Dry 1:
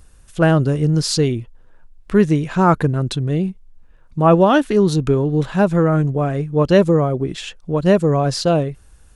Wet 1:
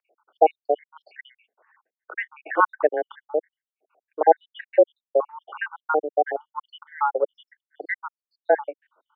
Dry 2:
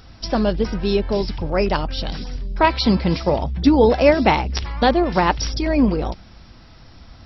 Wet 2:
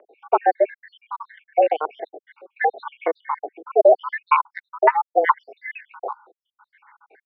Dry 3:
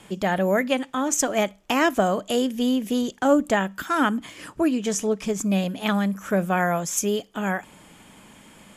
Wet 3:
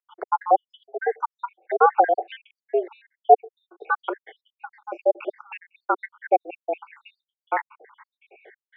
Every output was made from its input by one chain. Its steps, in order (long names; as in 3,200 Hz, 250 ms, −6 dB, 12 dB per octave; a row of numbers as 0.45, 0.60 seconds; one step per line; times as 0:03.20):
time-frequency cells dropped at random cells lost 82%
single-sideband voice off tune +150 Hz 290–2,200 Hz
normalise the peak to −2 dBFS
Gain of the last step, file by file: +4.0, +5.5, +7.5 decibels